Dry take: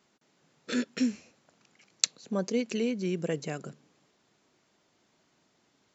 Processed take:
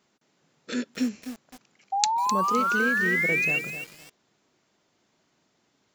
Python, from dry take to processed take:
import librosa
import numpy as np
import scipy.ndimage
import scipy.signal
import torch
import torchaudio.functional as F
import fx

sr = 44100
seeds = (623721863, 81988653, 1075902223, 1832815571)

y = fx.spec_paint(x, sr, seeds[0], shape='rise', start_s=1.92, length_s=1.67, low_hz=770.0, high_hz=2800.0, level_db=-25.0)
y = fx.echo_crushed(y, sr, ms=256, feedback_pct=35, bits=6, wet_db=-9.0)